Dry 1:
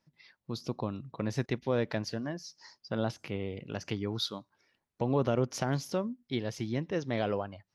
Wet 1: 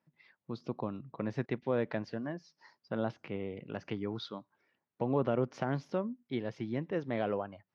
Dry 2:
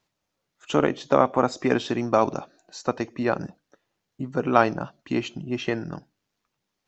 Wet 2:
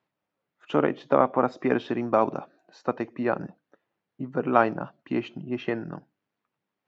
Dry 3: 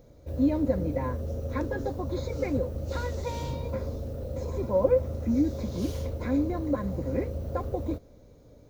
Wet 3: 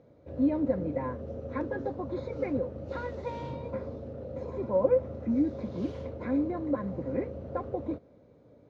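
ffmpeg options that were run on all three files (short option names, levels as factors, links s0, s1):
-af "highpass=130,lowpass=2400,volume=0.841"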